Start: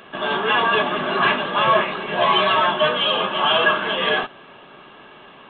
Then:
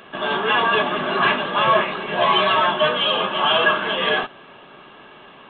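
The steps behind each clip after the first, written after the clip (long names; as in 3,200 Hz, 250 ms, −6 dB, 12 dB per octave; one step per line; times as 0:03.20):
no processing that can be heard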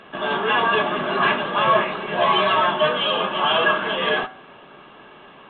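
low-pass filter 3,300 Hz 6 dB per octave
hum removal 126.7 Hz, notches 18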